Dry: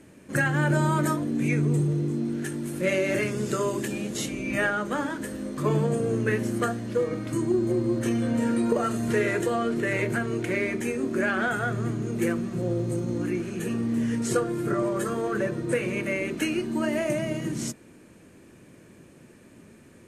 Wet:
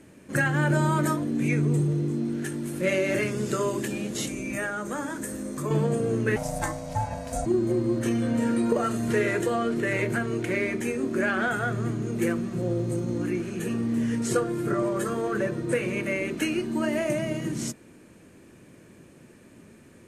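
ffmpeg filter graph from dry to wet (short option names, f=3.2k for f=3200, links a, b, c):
-filter_complex "[0:a]asettb=1/sr,asplit=3[a][b][c];[a]atrim=end=4.274[d];[b]atrim=start=4.27:end=5.71,asetpts=PTS-STARTPTS,afade=t=in:d=0.004:c=qsin,afade=t=out:st=1.436:d=0.004:c=qsin,highshelf=f=5.5k:t=q:w=1.5:g=6.5,bandreject=f=3k:w=16,acompressor=threshold=-29dB:ratio=2:attack=3.2:release=140:knee=1:detection=peak[e];[c]atrim=start=5.706[f];[d][e]acrossfade=d=0.004:c1=hsin:c2=qsin[g];[g][f]acrossfade=d=0.004:c1=qsin:c2=hsin,asettb=1/sr,asplit=3[h][i][j];[h]atrim=end=6.364[k];[i]atrim=start=6.36:end=7.46,asetpts=PTS-STARTPTS,afade=t=in:d=0.004:c=qsin,afade=t=out:st=1.096:d=0.004:c=qsin,highshelf=f=4.2k:t=q:w=1.5:g=6.5,aeval=exprs='val(0)*sin(2*PI*380*n/s)':c=same[l];[j]atrim=start=7.456[m];[k][l]acrossfade=d=0.004:c1=hsin:c2=qsin[n];[n][m]acrossfade=d=0.004:c1=qsin:c2=hsin"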